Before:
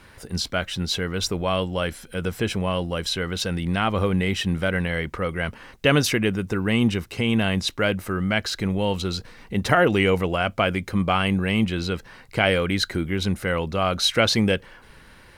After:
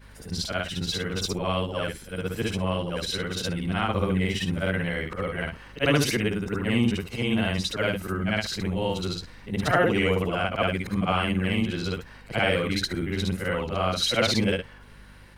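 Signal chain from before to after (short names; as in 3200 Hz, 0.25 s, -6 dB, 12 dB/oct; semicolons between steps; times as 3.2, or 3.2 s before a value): short-time reversal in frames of 0.151 s; hum 50 Hz, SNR 24 dB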